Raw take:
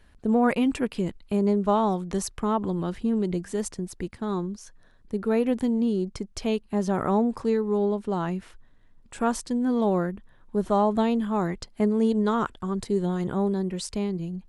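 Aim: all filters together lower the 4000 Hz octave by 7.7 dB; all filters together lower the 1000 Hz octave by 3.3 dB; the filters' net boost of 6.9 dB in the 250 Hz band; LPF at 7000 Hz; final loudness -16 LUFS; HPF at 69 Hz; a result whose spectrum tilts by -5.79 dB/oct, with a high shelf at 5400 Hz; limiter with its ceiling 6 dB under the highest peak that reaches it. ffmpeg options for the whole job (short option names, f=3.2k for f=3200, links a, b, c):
-af "highpass=69,lowpass=7k,equalizer=f=250:t=o:g=8.5,equalizer=f=1k:t=o:g=-4.5,equalizer=f=4k:t=o:g=-8.5,highshelf=f=5.4k:g=-3,volume=6.5dB,alimiter=limit=-6dB:level=0:latency=1"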